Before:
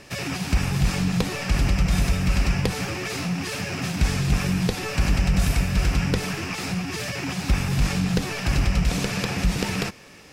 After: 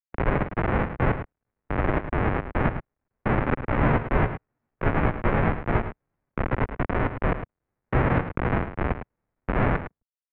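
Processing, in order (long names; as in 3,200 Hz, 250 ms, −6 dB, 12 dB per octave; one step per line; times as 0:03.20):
comparator with hysteresis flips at −22.5 dBFS
gate pattern ".xx.xx.x..." 106 BPM −60 dB
0:03.56–0:06.24: double-tracking delay 15 ms −3 dB
single-tap delay 107 ms −10.5 dB
single-sideband voice off tune −310 Hz 250–2,500 Hz
level +8.5 dB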